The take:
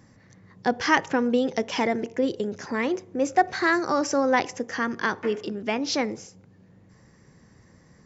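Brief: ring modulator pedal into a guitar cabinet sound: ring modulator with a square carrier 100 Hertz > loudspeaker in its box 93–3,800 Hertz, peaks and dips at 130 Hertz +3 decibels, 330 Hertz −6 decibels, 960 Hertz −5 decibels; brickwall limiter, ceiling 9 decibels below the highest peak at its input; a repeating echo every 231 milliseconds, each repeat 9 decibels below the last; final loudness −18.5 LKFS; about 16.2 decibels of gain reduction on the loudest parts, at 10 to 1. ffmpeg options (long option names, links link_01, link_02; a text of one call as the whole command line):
ffmpeg -i in.wav -af "acompressor=threshold=-31dB:ratio=10,alimiter=level_in=2.5dB:limit=-24dB:level=0:latency=1,volume=-2.5dB,aecho=1:1:231|462|693|924:0.355|0.124|0.0435|0.0152,aeval=exprs='val(0)*sgn(sin(2*PI*100*n/s))':channel_layout=same,highpass=93,equalizer=frequency=130:width_type=q:width=4:gain=3,equalizer=frequency=330:width_type=q:width=4:gain=-6,equalizer=frequency=960:width_type=q:width=4:gain=-5,lowpass=frequency=3800:width=0.5412,lowpass=frequency=3800:width=1.3066,volume=19.5dB" out.wav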